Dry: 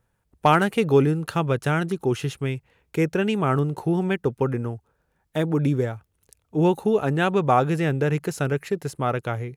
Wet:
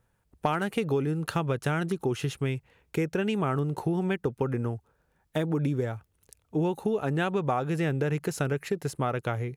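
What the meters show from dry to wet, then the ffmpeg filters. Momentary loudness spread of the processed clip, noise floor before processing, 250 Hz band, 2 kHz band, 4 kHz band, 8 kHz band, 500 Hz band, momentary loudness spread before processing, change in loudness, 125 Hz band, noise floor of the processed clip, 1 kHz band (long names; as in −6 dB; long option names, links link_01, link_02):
5 LU, −72 dBFS, −5.5 dB, −6.0 dB, −5.0 dB, −2.5 dB, −6.5 dB, 10 LU, −6.0 dB, −5.0 dB, −72 dBFS, −8.0 dB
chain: -af "acompressor=threshold=-24dB:ratio=6"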